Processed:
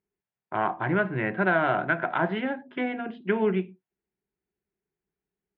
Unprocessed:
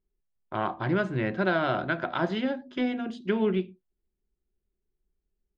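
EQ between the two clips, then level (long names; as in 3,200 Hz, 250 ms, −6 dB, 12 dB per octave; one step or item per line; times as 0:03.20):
loudspeaker in its box 180–2,400 Hz, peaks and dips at 240 Hz −8 dB, 350 Hz −6 dB, 550 Hz −7 dB, 1,200 Hz −5 dB
+6.0 dB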